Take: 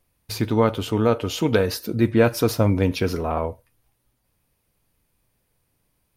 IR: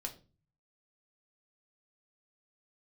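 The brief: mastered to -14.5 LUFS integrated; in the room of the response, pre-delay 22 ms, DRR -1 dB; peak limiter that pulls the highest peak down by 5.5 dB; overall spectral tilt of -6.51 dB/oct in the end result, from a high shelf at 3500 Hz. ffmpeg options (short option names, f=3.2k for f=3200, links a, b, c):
-filter_complex "[0:a]highshelf=f=3.5k:g=-6,alimiter=limit=-10dB:level=0:latency=1,asplit=2[a][b];[1:a]atrim=start_sample=2205,adelay=22[c];[b][c]afir=irnorm=-1:irlink=0,volume=2.5dB[d];[a][d]amix=inputs=2:normalize=0,volume=5dB"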